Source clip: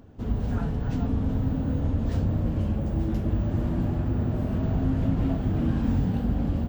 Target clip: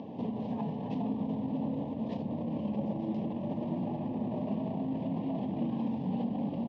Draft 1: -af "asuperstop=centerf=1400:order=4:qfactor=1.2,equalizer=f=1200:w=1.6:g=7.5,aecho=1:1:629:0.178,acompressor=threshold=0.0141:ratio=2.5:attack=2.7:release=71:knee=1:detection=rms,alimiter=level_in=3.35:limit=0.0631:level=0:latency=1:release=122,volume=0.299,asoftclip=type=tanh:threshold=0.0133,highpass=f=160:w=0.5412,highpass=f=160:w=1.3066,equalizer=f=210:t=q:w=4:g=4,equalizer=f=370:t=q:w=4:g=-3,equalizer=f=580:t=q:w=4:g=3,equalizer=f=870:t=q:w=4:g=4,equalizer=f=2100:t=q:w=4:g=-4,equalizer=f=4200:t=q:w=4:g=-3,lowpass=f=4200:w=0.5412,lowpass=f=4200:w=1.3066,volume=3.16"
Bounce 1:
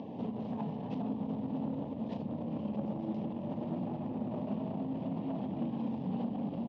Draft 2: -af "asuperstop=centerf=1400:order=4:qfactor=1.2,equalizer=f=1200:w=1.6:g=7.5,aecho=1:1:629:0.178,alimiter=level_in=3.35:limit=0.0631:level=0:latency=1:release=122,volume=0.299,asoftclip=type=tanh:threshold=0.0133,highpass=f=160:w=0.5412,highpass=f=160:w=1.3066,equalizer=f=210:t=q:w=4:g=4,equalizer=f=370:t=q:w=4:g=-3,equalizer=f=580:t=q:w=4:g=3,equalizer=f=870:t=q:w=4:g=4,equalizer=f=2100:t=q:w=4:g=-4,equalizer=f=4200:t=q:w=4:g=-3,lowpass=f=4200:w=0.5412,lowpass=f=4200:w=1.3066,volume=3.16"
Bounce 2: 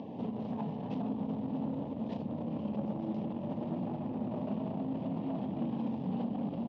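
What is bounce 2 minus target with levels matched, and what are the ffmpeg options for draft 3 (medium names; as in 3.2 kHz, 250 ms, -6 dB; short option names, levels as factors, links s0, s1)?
saturation: distortion +19 dB
-af "asuperstop=centerf=1400:order=4:qfactor=1.2,equalizer=f=1200:w=1.6:g=7.5,aecho=1:1:629:0.178,alimiter=level_in=3.35:limit=0.0631:level=0:latency=1:release=122,volume=0.299,asoftclip=type=tanh:threshold=0.0473,highpass=f=160:w=0.5412,highpass=f=160:w=1.3066,equalizer=f=210:t=q:w=4:g=4,equalizer=f=370:t=q:w=4:g=-3,equalizer=f=580:t=q:w=4:g=3,equalizer=f=870:t=q:w=4:g=4,equalizer=f=2100:t=q:w=4:g=-4,equalizer=f=4200:t=q:w=4:g=-3,lowpass=f=4200:w=0.5412,lowpass=f=4200:w=1.3066,volume=3.16"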